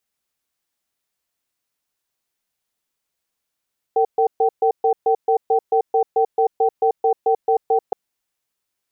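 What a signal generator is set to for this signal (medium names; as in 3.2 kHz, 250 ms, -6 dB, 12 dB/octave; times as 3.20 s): cadence 453 Hz, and 771 Hz, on 0.09 s, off 0.13 s, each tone -16 dBFS 3.97 s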